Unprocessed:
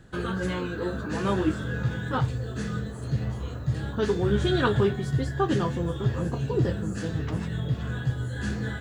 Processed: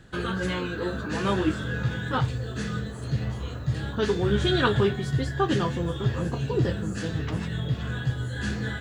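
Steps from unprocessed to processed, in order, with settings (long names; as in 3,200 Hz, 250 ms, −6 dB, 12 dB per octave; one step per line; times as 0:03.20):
parametric band 3,100 Hz +5 dB 2 octaves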